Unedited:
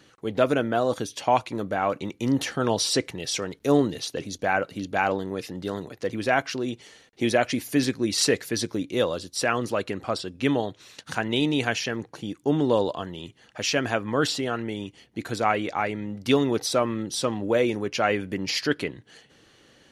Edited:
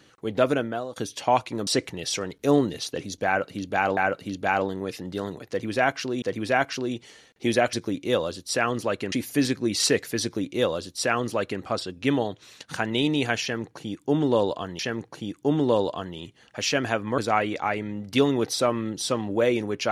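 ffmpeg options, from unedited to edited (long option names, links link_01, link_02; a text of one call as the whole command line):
ffmpeg -i in.wav -filter_complex "[0:a]asplit=9[link_01][link_02][link_03][link_04][link_05][link_06][link_07][link_08][link_09];[link_01]atrim=end=0.96,asetpts=PTS-STARTPTS,afade=type=out:start_time=0.5:duration=0.46:silence=0.112202[link_10];[link_02]atrim=start=0.96:end=1.672,asetpts=PTS-STARTPTS,afade=type=in:duration=0.004:curve=hsin:silence=0.112202[link_11];[link_03]atrim=start=2.878:end=5.182[link_12];[link_04]atrim=start=4.468:end=6.722[link_13];[link_05]atrim=start=5.988:end=7.502[link_14];[link_06]atrim=start=8.598:end=9.992[link_15];[link_07]atrim=start=7.498:end=13.172[link_16];[link_08]atrim=start=11.798:end=14.192[link_17];[link_09]atrim=start=15.308[link_18];[link_10][link_11]concat=n=2:v=0:a=1[link_19];[link_19][link_12]acrossfade=duration=0.004:curve1=hsin:curve2=hsin[link_20];[link_20][link_13]acrossfade=duration=0.004:curve1=hsin:curve2=hsin[link_21];[link_21][link_14]acrossfade=duration=0.004:curve1=hsin:curve2=hsin[link_22];[link_22][link_15]acrossfade=duration=0.004:curve1=hsin:curve2=hsin[link_23];[link_23][link_16]acrossfade=duration=0.004:curve1=hsin:curve2=hsin[link_24];[link_24][link_17]acrossfade=duration=0.004:curve1=hsin:curve2=hsin[link_25];[link_25][link_18]acrossfade=duration=0.004:curve1=hsin:curve2=hsin" out.wav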